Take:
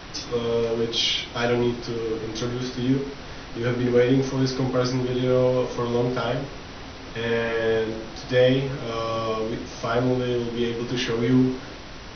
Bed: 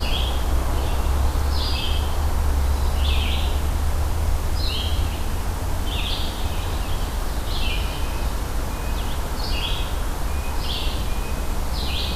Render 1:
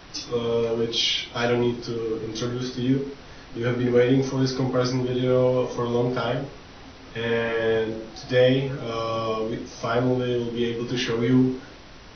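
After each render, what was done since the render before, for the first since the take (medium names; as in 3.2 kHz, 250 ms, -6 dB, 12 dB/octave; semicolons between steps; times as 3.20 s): noise print and reduce 6 dB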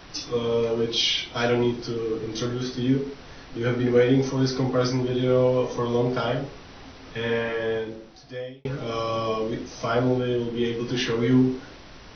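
7.15–8.65 s: fade out linear; 10.19–10.65 s: distance through air 81 m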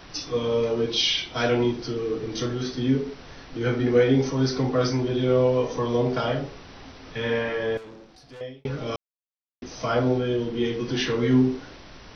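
7.77–8.41 s: valve stage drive 40 dB, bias 0.55; 8.96–9.62 s: mute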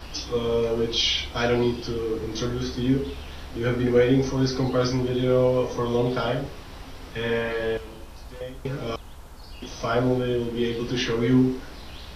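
add bed -18 dB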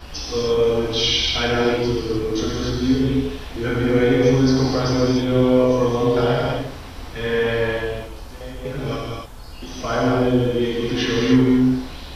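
gated-style reverb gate 320 ms flat, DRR -3.5 dB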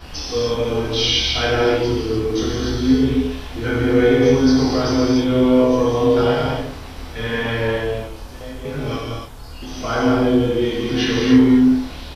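doubling 27 ms -4 dB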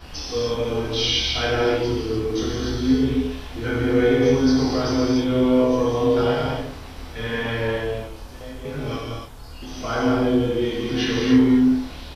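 trim -3.5 dB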